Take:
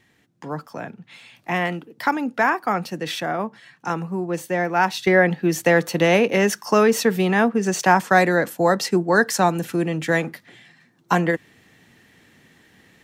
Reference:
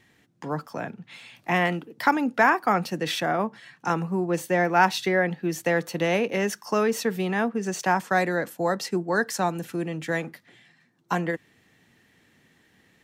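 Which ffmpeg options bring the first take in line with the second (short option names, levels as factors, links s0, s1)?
-af "asetnsamples=n=441:p=0,asendcmd='5.07 volume volume -7dB',volume=1"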